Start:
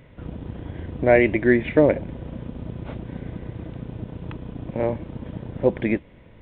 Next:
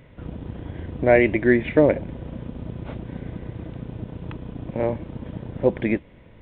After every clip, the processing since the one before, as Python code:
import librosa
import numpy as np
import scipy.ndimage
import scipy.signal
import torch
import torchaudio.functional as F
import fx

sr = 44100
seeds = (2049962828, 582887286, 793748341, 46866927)

y = x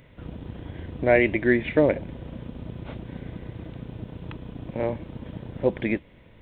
y = fx.high_shelf(x, sr, hz=3100.0, db=9.0)
y = y * 10.0 ** (-3.5 / 20.0)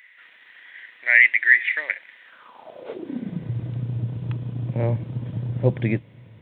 y = fx.filter_sweep_highpass(x, sr, from_hz=1900.0, to_hz=120.0, start_s=2.23, end_s=3.5, q=6.7)
y = y * 10.0 ** (-1.0 / 20.0)